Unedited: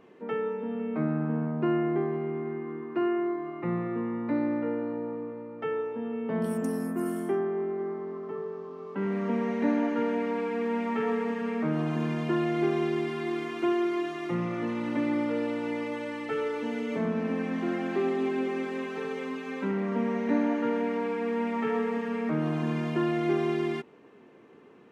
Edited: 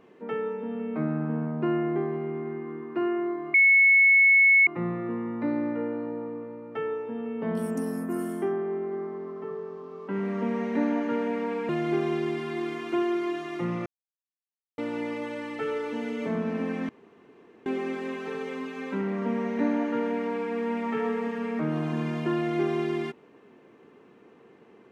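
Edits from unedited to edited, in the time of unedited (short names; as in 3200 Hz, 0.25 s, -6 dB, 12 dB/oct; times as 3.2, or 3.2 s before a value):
3.54 add tone 2200 Hz -14.5 dBFS 1.13 s
10.56–12.39 cut
14.56–15.48 mute
17.59–18.36 room tone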